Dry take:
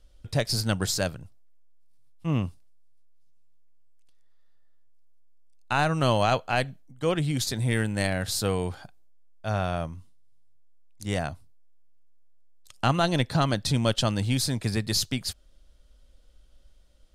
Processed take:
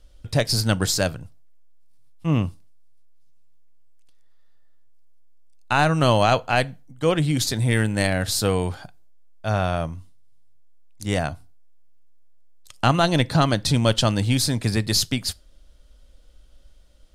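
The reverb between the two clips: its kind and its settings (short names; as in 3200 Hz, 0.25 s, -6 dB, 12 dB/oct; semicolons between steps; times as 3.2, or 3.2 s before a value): FDN reverb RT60 0.32 s, low-frequency decay 1.1×, high-frequency decay 0.8×, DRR 19 dB; gain +5 dB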